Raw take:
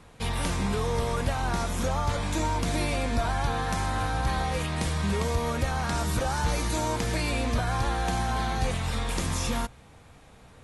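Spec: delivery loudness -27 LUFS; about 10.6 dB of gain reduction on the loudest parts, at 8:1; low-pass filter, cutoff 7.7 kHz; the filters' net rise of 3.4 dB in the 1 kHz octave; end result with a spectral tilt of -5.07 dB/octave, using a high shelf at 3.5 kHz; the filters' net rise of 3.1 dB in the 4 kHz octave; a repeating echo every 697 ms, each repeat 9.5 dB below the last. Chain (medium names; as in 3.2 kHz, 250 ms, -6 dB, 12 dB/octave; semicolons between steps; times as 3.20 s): low-pass 7.7 kHz; peaking EQ 1 kHz +4.5 dB; treble shelf 3.5 kHz -6.5 dB; peaking EQ 4 kHz +8 dB; compression 8:1, threshold -32 dBFS; feedback delay 697 ms, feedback 33%, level -9.5 dB; trim +9 dB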